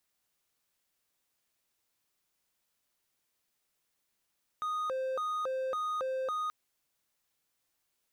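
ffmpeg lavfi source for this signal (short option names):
-f lavfi -i "aevalsrc='0.0355*(1-4*abs(mod((881.5*t+358.5/1.8*(0.5-abs(mod(1.8*t,1)-0.5)))+0.25,1)-0.5))':d=1.88:s=44100"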